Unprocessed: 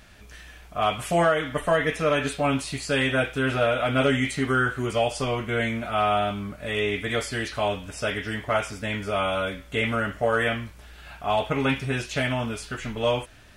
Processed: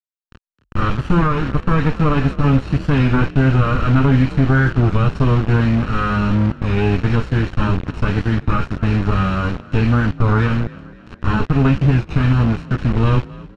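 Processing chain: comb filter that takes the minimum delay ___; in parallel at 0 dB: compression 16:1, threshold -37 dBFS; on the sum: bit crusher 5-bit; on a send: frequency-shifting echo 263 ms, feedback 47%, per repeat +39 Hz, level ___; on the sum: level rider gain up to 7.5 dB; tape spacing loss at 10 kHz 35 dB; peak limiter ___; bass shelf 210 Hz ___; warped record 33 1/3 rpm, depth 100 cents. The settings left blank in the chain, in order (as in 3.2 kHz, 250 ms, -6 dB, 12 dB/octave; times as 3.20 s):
0.72 ms, -20 dB, -10.5 dBFS, +11 dB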